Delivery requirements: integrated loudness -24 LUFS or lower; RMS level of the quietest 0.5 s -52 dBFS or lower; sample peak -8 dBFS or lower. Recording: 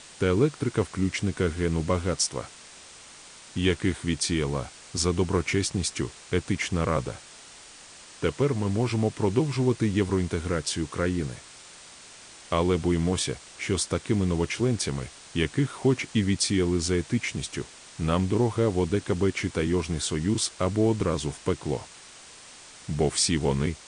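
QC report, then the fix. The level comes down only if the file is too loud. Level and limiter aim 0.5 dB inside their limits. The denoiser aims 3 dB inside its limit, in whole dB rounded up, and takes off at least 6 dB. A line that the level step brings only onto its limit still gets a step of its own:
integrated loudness -27.0 LUFS: pass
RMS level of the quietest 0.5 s -48 dBFS: fail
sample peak -9.5 dBFS: pass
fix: noise reduction 7 dB, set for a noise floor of -48 dBFS

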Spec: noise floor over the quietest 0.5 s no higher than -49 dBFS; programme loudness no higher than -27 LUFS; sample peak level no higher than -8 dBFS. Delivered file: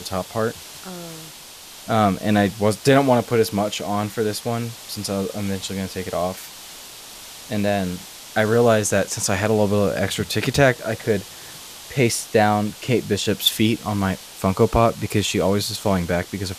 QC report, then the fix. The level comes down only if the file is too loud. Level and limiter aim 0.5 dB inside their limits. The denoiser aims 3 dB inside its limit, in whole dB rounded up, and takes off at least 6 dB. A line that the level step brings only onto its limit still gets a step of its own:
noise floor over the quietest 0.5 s -41 dBFS: fail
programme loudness -21.0 LUFS: fail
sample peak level -3.0 dBFS: fail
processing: noise reduction 6 dB, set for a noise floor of -41 dBFS; trim -6.5 dB

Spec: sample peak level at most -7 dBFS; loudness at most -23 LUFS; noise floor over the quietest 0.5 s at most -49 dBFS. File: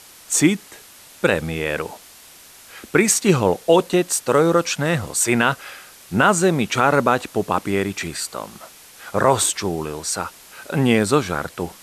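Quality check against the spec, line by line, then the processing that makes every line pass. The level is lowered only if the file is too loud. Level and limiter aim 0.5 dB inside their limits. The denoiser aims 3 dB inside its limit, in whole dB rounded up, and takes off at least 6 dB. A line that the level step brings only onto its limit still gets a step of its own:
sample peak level -2.5 dBFS: fail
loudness -19.5 LUFS: fail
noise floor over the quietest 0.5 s -45 dBFS: fail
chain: noise reduction 6 dB, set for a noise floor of -45 dBFS; trim -4 dB; peak limiter -7.5 dBFS

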